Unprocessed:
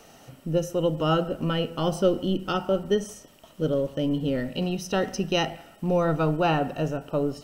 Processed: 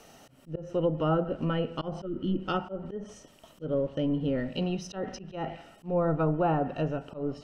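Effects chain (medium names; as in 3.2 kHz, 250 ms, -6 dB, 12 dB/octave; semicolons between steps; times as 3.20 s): low-pass that closes with the level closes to 1.2 kHz, closed at -19 dBFS; spectral replace 2.08–2.35 s, 370–1200 Hz after; slow attack 161 ms; trim -2.5 dB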